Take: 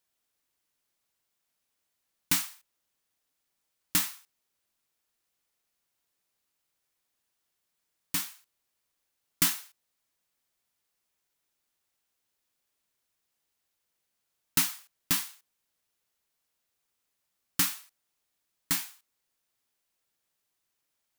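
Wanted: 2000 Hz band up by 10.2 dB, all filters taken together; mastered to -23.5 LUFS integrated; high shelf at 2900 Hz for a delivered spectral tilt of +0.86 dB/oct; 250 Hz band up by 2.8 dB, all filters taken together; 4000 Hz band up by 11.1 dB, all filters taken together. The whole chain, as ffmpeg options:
-af "equalizer=f=250:t=o:g=3.5,equalizer=f=2k:t=o:g=7.5,highshelf=f=2.9k:g=9,equalizer=f=4k:t=o:g=4.5,volume=-3.5dB"

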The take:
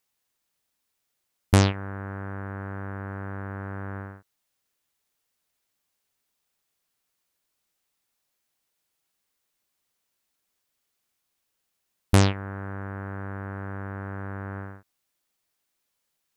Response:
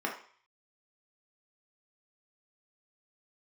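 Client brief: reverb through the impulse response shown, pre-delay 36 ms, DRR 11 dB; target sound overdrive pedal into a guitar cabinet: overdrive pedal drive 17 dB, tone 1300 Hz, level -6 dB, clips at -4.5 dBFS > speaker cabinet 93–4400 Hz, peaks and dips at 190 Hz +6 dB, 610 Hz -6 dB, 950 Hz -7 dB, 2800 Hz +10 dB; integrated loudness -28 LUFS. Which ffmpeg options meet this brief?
-filter_complex "[0:a]asplit=2[a][b];[1:a]atrim=start_sample=2205,adelay=36[c];[b][c]afir=irnorm=-1:irlink=0,volume=-18dB[d];[a][d]amix=inputs=2:normalize=0,asplit=2[e][f];[f]highpass=f=720:p=1,volume=17dB,asoftclip=type=tanh:threshold=-4.5dB[g];[e][g]amix=inputs=2:normalize=0,lowpass=f=1.3k:p=1,volume=-6dB,highpass=93,equalizer=f=190:t=q:w=4:g=6,equalizer=f=610:t=q:w=4:g=-6,equalizer=f=950:t=q:w=4:g=-7,equalizer=f=2.8k:t=q:w=4:g=10,lowpass=f=4.4k:w=0.5412,lowpass=f=4.4k:w=1.3066,volume=1dB"

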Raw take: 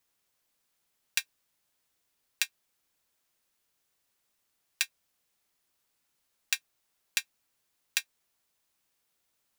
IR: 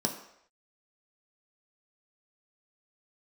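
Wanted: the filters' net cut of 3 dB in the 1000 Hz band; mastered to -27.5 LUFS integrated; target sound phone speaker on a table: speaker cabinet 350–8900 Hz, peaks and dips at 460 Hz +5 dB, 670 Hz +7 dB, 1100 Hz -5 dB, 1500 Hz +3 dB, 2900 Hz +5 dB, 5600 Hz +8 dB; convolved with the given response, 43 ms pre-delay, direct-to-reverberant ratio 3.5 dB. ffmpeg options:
-filter_complex "[0:a]equalizer=f=1k:t=o:g=-5,asplit=2[a][b];[1:a]atrim=start_sample=2205,adelay=43[c];[b][c]afir=irnorm=-1:irlink=0,volume=-9.5dB[d];[a][d]amix=inputs=2:normalize=0,highpass=f=350:w=0.5412,highpass=f=350:w=1.3066,equalizer=f=460:t=q:w=4:g=5,equalizer=f=670:t=q:w=4:g=7,equalizer=f=1.1k:t=q:w=4:g=-5,equalizer=f=1.5k:t=q:w=4:g=3,equalizer=f=2.9k:t=q:w=4:g=5,equalizer=f=5.6k:t=q:w=4:g=8,lowpass=f=8.9k:w=0.5412,lowpass=f=8.9k:w=1.3066,volume=2.5dB"

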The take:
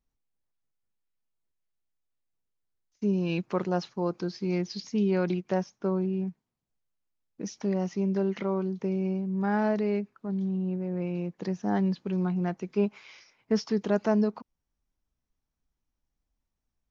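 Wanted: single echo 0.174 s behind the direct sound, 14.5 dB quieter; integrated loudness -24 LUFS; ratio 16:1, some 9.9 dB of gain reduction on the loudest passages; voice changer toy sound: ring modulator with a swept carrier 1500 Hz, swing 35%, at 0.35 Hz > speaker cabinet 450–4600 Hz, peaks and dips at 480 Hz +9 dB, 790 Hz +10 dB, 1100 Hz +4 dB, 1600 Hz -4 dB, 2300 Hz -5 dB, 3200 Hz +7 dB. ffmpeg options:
-af "acompressor=threshold=-29dB:ratio=16,aecho=1:1:174:0.188,aeval=exprs='val(0)*sin(2*PI*1500*n/s+1500*0.35/0.35*sin(2*PI*0.35*n/s))':c=same,highpass=450,equalizer=f=480:t=q:w=4:g=9,equalizer=f=790:t=q:w=4:g=10,equalizer=f=1.1k:t=q:w=4:g=4,equalizer=f=1.6k:t=q:w=4:g=-4,equalizer=f=2.3k:t=q:w=4:g=-5,equalizer=f=3.2k:t=q:w=4:g=7,lowpass=f=4.6k:w=0.5412,lowpass=f=4.6k:w=1.3066,volume=11dB"

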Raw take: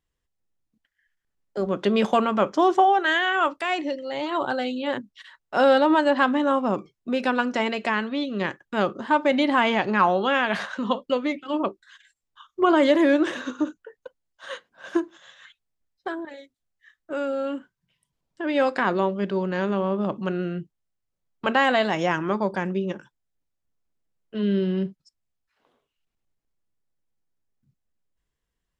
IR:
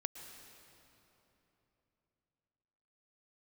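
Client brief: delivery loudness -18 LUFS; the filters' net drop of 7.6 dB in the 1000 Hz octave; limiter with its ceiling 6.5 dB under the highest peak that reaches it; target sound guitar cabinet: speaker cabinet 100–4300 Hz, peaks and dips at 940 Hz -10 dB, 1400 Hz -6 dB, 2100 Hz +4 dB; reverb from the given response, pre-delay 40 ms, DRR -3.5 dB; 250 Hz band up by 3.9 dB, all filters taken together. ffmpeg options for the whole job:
-filter_complex "[0:a]equalizer=f=250:t=o:g=5.5,equalizer=f=1k:t=o:g=-5,alimiter=limit=-13.5dB:level=0:latency=1,asplit=2[a][b];[1:a]atrim=start_sample=2205,adelay=40[c];[b][c]afir=irnorm=-1:irlink=0,volume=4.5dB[d];[a][d]amix=inputs=2:normalize=0,highpass=100,equalizer=f=940:t=q:w=4:g=-10,equalizer=f=1.4k:t=q:w=4:g=-6,equalizer=f=2.1k:t=q:w=4:g=4,lowpass=f=4.3k:w=0.5412,lowpass=f=4.3k:w=1.3066,volume=2.5dB"

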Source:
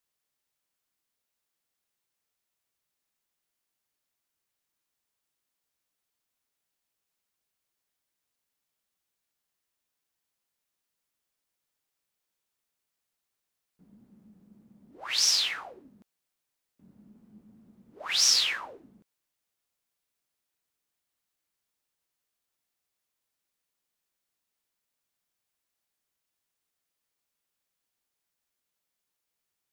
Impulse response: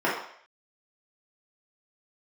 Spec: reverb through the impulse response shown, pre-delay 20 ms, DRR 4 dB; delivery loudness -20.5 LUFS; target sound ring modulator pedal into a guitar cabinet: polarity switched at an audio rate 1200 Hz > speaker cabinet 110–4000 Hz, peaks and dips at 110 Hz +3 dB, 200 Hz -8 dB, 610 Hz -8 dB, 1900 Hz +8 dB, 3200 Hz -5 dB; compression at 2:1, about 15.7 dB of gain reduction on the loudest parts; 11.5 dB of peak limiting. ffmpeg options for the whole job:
-filter_complex "[0:a]acompressor=threshold=-49dB:ratio=2,alimiter=level_in=13.5dB:limit=-24dB:level=0:latency=1,volume=-13.5dB,asplit=2[a][b];[1:a]atrim=start_sample=2205,adelay=20[c];[b][c]afir=irnorm=-1:irlink=0,volume=-19.5dB[d];[a][d]amix=inputs=2:normalize=0,aeval=exprs='val(0)*sgn(sin(2*PI*1200*n/s))':c=same,highpass=110,equalizer=f=110:t=q:w=4:g=3,equalizer=f=200:t=q:w=4:g=-8,equalizer=f=610:t=q:w=4:g=-8,equalizer=f=1.9k:t=q:w=4:g=8,equalizer=f=3.2k:t=q:w=4:g=-5,lowpass=f=4k:w=0.5412,lowpass=f=4k:w=1.3066,volume=29dB"

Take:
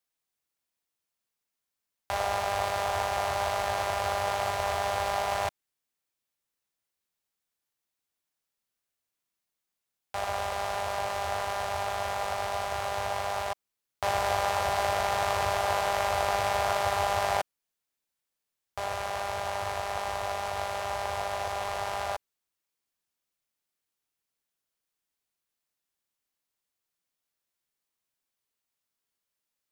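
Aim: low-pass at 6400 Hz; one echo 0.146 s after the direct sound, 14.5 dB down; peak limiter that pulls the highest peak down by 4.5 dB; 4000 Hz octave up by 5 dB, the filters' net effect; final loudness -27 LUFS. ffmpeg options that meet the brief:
-af "lowpass=6.4k,equalizer=f=4k:t=o:g=7,alimiter=limit=-14dB:level=0:latency=1,aecho=1:1:146:0.188,volume=2.5dB"

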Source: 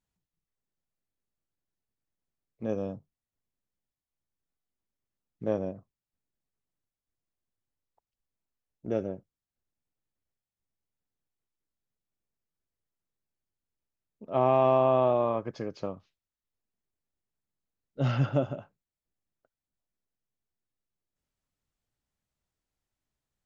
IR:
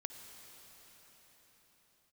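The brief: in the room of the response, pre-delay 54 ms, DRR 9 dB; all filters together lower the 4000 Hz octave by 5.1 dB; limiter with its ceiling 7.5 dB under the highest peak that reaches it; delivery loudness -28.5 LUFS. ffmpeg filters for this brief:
-filter_complex "[0:a]equalizer=f=4k:t=o:g=-7.5,alimiter=limit=-19dB:level=0:latency=1,asplit=2[a][b];[1:a]atrim=start_sample=2205,adelay=54[c];[b][c]afir=irnorm=-1:irlink=0,volume=-6.5dB[d];[a][d]amix=inputs=2:normalize=0,volume=4.5dB"

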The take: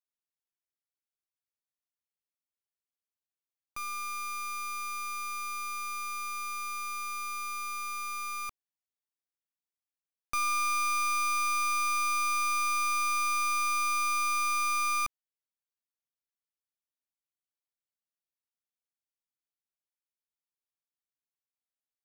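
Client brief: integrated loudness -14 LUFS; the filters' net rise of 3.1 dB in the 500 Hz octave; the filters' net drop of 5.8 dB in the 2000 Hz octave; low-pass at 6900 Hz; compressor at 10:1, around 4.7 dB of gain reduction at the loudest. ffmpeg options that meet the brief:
-af "lowpass=6.9k,equalizer=f=500:t=o:g=4.5,equalizer=f=2k:t=o:g=-7.5,acompressor=threshold=-33dB:ratio=10,volume=23dB"

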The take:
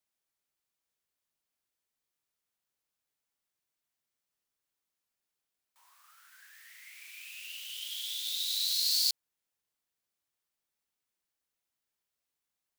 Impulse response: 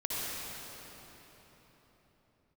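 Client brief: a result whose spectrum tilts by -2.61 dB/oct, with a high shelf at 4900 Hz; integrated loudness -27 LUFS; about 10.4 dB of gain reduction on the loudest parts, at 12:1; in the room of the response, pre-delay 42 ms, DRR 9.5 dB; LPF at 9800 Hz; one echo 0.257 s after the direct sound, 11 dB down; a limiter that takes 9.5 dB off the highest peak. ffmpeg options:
-filter_complex "[0:a]lowpass=9.8k,highshelf=f=4.9k:g=-5,acompressor=threshold=-38dB:ratio=12,alimiter=level_in=13dB:limit=-24dB:level=0:latency=1,volume=-13dB,aecho=1:1:257:0.282,asplit=2[a][b];[1:a]atrim=start_sample=2205,adelay=42[c];[b][c]afir=irnorm=-1:irlink=0,volume=-16dB[d];[a][d]amix=inputs=2:normalize=0,volume=17.5dB"

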